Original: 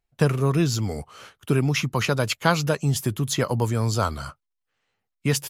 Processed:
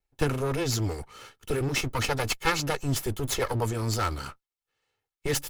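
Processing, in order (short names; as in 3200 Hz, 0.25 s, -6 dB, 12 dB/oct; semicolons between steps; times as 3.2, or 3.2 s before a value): minimum comb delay 2.3 ms; gain -1 dB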